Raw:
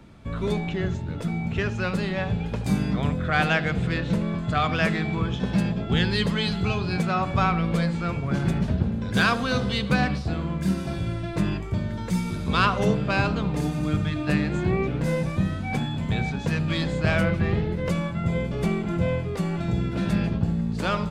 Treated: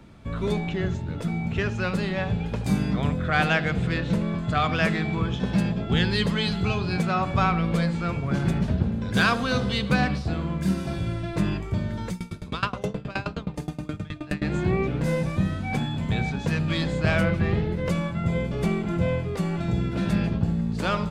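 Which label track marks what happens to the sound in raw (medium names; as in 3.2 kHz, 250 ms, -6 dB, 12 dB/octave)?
12.100000	14.420000	sawtooth tremolo in dB decaying 9.5 Hz, depth 24 dB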